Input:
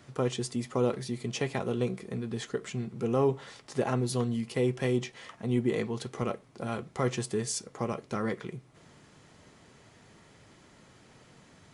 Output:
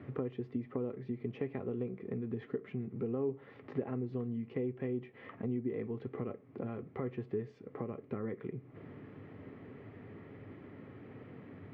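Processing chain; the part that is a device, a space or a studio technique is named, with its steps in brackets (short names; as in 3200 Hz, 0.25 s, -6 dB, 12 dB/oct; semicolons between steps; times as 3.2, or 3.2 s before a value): bass amplifier (compressor 4:1, threshold -45 dBFS, peak gain reduction 19.5 dB; speaker cabinet 84–2100 Hz, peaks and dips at 100 Hz +9 dB, 270 Hz +8 dB, 420 Hz +6 dB, 660 Hz -3 dB, 940 Hz -7 dB, 1500 Hz -7 dB); gain +4.5 dB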